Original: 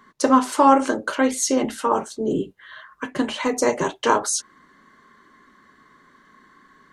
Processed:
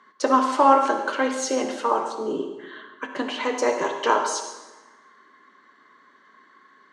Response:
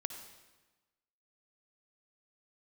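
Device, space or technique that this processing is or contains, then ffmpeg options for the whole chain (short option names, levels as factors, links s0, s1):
supermarket ceiling speaker: -filter_complex "[0:a]highpass=350,lowpass=5300[s0];[1:a]atrim=start_sample=2205[s1];[s0][s1]afir=irnorm=-1:irlink=0"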